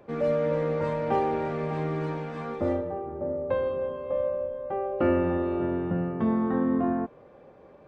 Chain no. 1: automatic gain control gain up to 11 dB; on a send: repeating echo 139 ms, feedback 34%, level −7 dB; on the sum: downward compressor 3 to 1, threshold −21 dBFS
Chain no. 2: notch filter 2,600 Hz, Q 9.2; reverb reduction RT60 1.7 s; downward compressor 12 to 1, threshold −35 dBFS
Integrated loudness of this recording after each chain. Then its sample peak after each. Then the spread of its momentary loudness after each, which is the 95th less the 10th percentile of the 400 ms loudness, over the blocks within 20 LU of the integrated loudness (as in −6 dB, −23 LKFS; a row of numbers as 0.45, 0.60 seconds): −23.5, −40.0 LKFS; −10.0, −23.0 dBFS; 3, 4 LU